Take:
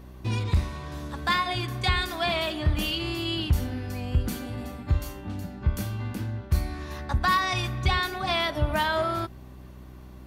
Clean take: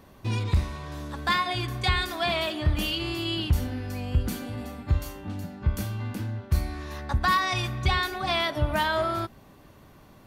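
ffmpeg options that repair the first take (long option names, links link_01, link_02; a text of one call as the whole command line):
ffmpeg -i in.wav -af "bandreject=frequency=62.9:width_type=h:width=4,bandreject=frequency=125.8:width_type=h:width=4,bandreject=frequency=188.7:width_type=h:width=4,bandreject=frequency=251.6:width_type=h:width=4,bandreject=frequency=314.5:width_type=h:width=4,bandreject=frequency=377.4:width_type=h:width=4" out.wav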